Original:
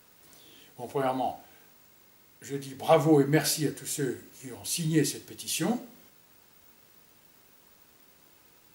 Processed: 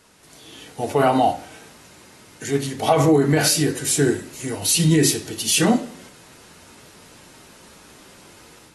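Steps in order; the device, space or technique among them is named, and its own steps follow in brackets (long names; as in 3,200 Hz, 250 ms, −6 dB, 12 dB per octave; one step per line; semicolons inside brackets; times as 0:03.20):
low-bitrate web radio (automatic gain control gain up to 7.5 dB; brickwall limiter −14 dBFS, peak gain reduction 11 dB; level +6 dB; AAC 32 kbit/s 32,000 Hz)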